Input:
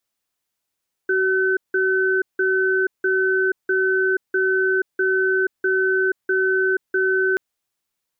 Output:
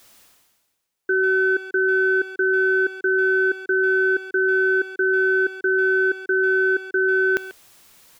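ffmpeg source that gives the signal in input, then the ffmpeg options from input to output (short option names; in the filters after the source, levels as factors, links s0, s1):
-f lavfi -i "aevalsrc='0.112*(sin(2*PI*378*t)+sin(2*PI*1520*t))*clip(min(mod(t,0.65),0.48-mod(t,0.65))/0.005,0,1)':d=6.28:s=44100"
-filter_complex "[0:a]areverse,acompressor=mode=upward:threshold=0.0355:ratio=2.5,areverse,asplit=2[s0][s1];[s1]adelay=140,highpass=300,lowpass=3400,asoftclip=type=hard:threshold=0.119,volume=0.224[s2];[s0][s2]amix=inputs=2:normalize=0"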